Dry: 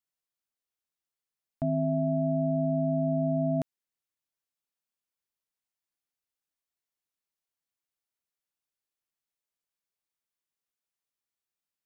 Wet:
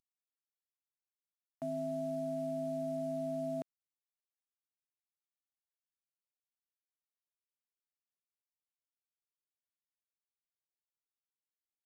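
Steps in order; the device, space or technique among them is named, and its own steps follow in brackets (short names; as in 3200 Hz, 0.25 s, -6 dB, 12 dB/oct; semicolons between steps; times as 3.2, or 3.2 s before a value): early wireless headset (HPF 280 Hz 12 dB/oct; CVSD 64 kbps); gain -7 dB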